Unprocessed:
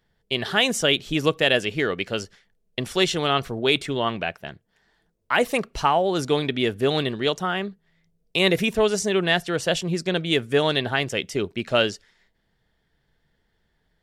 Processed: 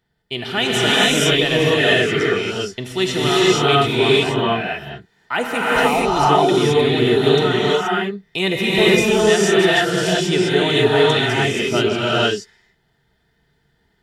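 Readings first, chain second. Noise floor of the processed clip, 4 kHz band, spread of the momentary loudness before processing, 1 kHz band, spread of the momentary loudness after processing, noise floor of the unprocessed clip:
-64 dBFS, +6.5 dB, 9 LU, +7.5 dB, 10 LU, -71 dBFS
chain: notch comb 550 Hz; non-linear reverb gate 0.5 s rising, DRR -7.5 dB

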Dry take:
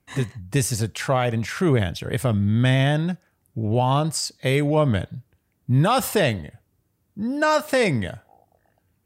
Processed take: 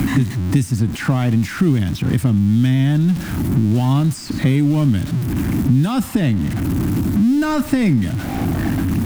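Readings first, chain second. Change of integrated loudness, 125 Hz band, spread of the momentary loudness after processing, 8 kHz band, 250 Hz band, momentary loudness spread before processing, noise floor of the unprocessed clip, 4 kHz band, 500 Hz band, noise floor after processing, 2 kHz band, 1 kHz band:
+4.5 dB, +7.0 dB, 5 LU, -2.5 dB, +9.5 dB, 11 LU, -70 dBFS, -1.5 dB, -5.5 dB, -29 dBFS, -1.0 dB, -3.5 dB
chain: zero-crossing step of -24.5 dBFS; resonant low shelf 360 Hz +8.5 dB, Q 3; three-band squash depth 100%; gain -6 dB

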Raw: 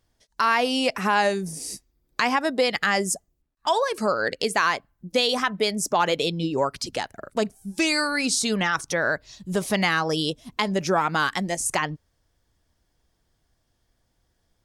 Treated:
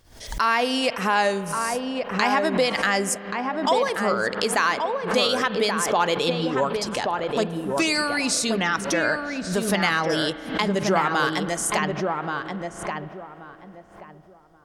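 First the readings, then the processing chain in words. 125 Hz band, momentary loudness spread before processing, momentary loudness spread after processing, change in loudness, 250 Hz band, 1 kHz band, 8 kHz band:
+1.5 dB, 9 LU, 7 LU, +1.0 dB, +2.0 dB, +1.5 dB, +0.5 dB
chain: bell 180 Hz -2 dB; on a send: darkening echo 1.13 s, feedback 24%, low-pass 1300 Hz, level -3 dB; on the sum: spring tank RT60 3.6 s, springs 35 ms, chirp 65 ms, DRR 14 dB; backwards sustainer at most 99 dB/s

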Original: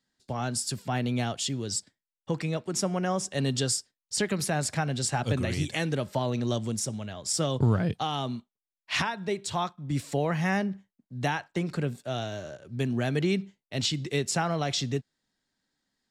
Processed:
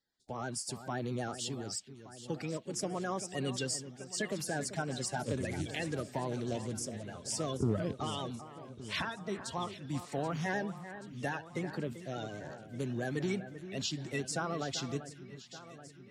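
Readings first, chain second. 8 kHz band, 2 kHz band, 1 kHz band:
-7.5 dB, -6.5 dB, -7.5 dB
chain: bin magnitudes rounded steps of 30 dB; vibrato 9.3 Hz 49 cents; echo with dull and thin repeats by turns 0.39 s, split 2100 Hz, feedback 77%, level -11.5 dB; gain -7.5 dB

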